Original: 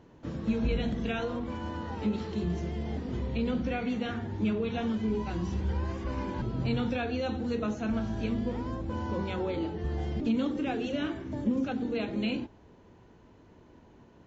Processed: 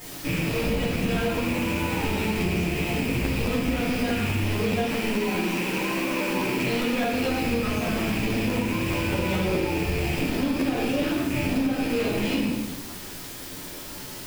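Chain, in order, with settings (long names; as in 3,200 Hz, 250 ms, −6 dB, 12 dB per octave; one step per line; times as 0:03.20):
loose part that buzzes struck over −37 dBFS, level −23 dBFS
0:04.83–0:07.12: high-pass filter 200 Hz 24 dB per octave
hard clipping −29 dBFS, distortion −10 dB
bit-depth reduction 8 bits, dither triangular
convolution reverb RT60 0.95 s, pre-delay 5 ms, DRR −9 dB
downward compressor, threshold −21 dBFS, peak gain reduction 8 dB
regular buffer underruns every 0.21 s, samples 512, repeat, from 0:00.93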